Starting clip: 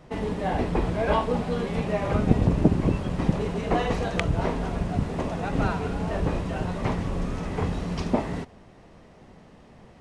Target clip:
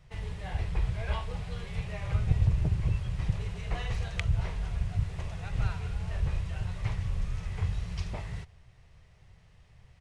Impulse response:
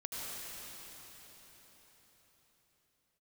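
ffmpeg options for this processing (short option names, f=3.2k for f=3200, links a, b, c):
-af "firequalizer=gain_entry='entry(110,0);entry(240,-28);entry(400,-19);entry(2100,-6)':delay=0.05:min_phase=1"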